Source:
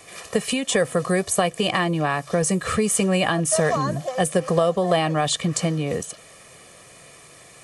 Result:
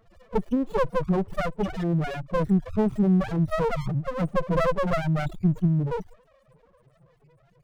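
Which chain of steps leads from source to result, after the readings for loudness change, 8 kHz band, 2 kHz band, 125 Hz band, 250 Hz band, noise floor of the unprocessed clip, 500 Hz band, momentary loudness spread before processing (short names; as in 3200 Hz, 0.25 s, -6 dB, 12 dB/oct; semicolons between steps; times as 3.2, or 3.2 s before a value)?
-4.0 dB, under -25 dB, -9.5 dB, +1.0 dB, -0.5 dB, -48 dBFS, -5.5 dB, 6 LU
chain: loudest bins only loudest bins 2; running maximum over 33 samples; gain +4.5 dB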